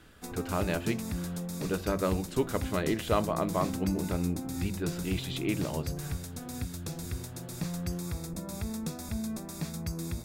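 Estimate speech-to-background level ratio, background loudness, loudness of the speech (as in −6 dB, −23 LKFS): 4.5 dB, −37.5 LKFS, −33.0 LKFS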